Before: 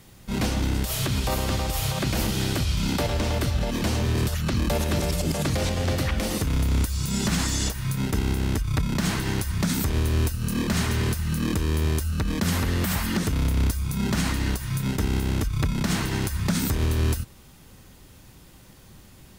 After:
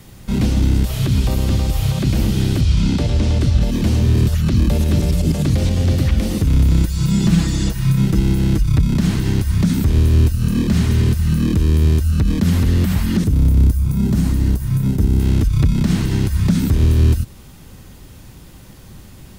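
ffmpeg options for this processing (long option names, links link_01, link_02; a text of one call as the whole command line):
ffmpeg -i in.wav -filter_complex "[0:a]asettb=1/sr,asplit=3[link_01][link_02][link_03];[link_01]atrim=end=2.614[link_04];[link_02]atrim=start=2.61:end=3.62,asetpts=PTS-STARTPTS,afade=type=in:duration=0.004:curve=qsin,afade=type=out:start_time=1.006:duration=0.004:curve=qsin,lowpass=8100[link_05];[link_03]atrim=start=3.616[link_06];[link_04][link_05]acrossfade=duration=0.004:curve1=hsin:curve2=qsin[link_07];[link_07][link_06]acrossfade=duration=0.004:curve1=qsin:curve2=hsin,asettb=1/sr,asplit=3[link_08][link_09][link_10];[link_08]atrim=end=6.704[link_11];[link_09]atrim=start=6.7:end=8.7,asetpts=PTS-STARTPTS,afade=type=in:duration=0.004:curve=qsin,afade=type=out:start_time=1.996:duration=0.004:curve=qsin,aecho=1:1:6:0.65,atrim=end_sample=88200[link_12];[link_10]atrim=start=8.696[link_13];[link_11][link_12]acrossfade=duration=0.004:curve1=hsin:curve2=qsin[link_14];[link_14][link_13]acrossfade=duration=0.004:curve1=qsin:curve2=hsin,asettb=1/sr,asplit=3[link_15][link_16][link_17];[link_15]atrim=end=13.244[link_18];[link_16]atrim=start=13.24:end=15.2,asetpts=PTS-STARTPTS,afade=type=in:duration=0.004:curve=qsin,afade=type=out:start_time=1.956:duration=0.004:curve=qsin,equalizer=frequency=2800:width=0.3:gain=-10[link_19];[link_17]atrim=start=15.196[link_20];[link_18][link_19]acrossfade=duration=0.004:curve1=hsin:curve2=qsin[link_21];[link_21][link_20]acrossfade=duration=0.004:curve1=qsin:curve2=hsin,acrossover=split=3300[link_22][link_23];[link_23]acompressor=threshold=-39dB:ratio=4:attack=1:release=60[link_24];[link_22][link_24]amix=inputs=2:normalize=0,lowshelf=frequency=300:gain=5,acrossover=split=400|3000[link_25][link_26][link_27];[link_26]acompressor=threshold=-45dB:ratio=2.5[link_28];[link_25][link_28][link_27]amix=inputs=3:normalize=0,volume=6dB" out.wav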